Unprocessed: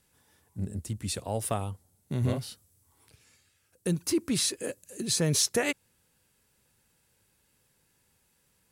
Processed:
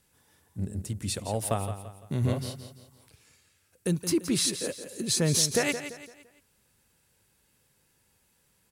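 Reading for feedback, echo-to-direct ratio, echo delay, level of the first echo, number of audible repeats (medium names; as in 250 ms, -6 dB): 39%, -10.0 dB, 170 ms, -10.5 dB, 3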